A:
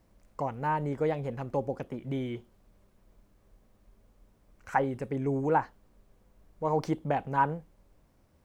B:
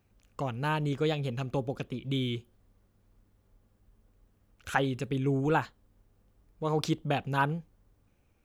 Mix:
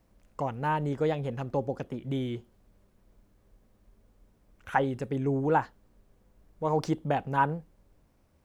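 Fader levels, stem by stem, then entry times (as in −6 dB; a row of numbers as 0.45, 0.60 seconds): −1.5, −9.5 decibels; 0.00, 0.00 seconds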